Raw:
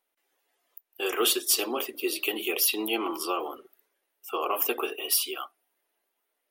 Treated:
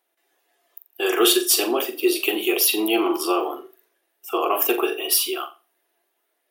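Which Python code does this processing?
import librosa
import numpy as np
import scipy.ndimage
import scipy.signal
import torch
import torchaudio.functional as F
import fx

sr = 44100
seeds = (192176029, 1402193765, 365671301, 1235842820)

p1 = fx.low_shelf(x, sr, hz=120.0, db=-10.5)
p2 = fx.small_body(p1, sr, hz=(350.0, 680.0, 1700.0, 3700.0), ring_ms=45, db=8)
p3 = p2 + fx.room_flutter(p2, sr, wall_m=7.3, rt60_s=0.28, dry=0)
y = p3 * librosa.db_to_amplitude(5.0)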